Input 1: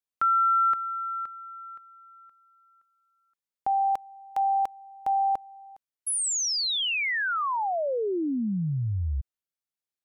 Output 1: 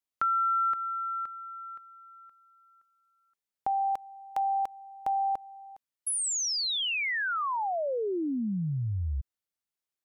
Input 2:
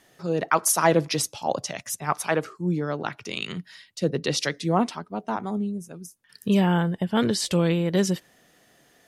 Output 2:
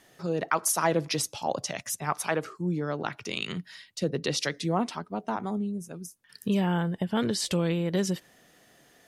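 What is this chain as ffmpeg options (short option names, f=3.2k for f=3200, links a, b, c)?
-af "acompressor=threshold=-35dB:ratio=1.5:attack=76:release=103:detection=rms"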